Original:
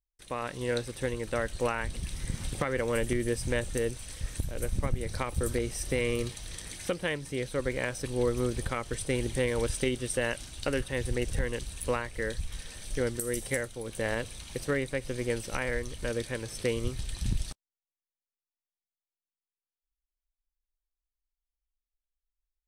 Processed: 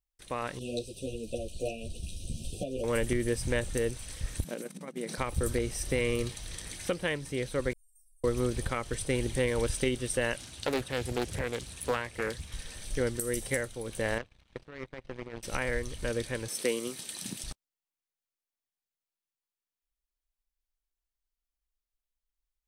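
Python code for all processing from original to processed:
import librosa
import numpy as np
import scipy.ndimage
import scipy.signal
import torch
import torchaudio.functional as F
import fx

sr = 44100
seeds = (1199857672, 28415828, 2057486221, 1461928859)

y = fx.chain(x, sr, fx.brickwall_bandstop(low_hz=750.0, high_hz=2400.0),
    fx.ensemble(), at=(0.59, 2.84))
y = fx.chain(y, sr, fx.over_compress(threshold_db=-36.0, ratio=-1.0),
    fx.brickwall_highpass(low_hz=160.0),
    fx.low_shelf(hz=240.0, db=8.5), at=(4.44, 5.18))
y = fx.chain(y, sr, fx.cheby2_bandstop(low_hz=140.0, high_hz=2000.0, order=4, stop_db=80),
    fx.stiff_resonator(f0_hz=350.0, decay_s=0.52, stiffness=0.002),
    fx.env_flatten(amount_pct=50), at=(7.73, 8.24))
y = fx.chain(y, sr, fx.highpass(hz=85.0, slope=12),
    fx.doppler_dist(depth_ms=0.68), at=(10.37, 12.54))
y = fx.chain(y, sr, fx.lowpass(hz=2900.0, slope=12),
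    fx.power_curve(exponent=2.0),
    fx.over_compress(threshold_db=-41.0, ratio=-1.0), at=(14.18, 15.43))
y = fx.chain(y, sr, fx.highpass(hz=200.0, slope=24),
    fx.high_shelf(hz=8000.0, db=11.5), at=(16.48, 17.44))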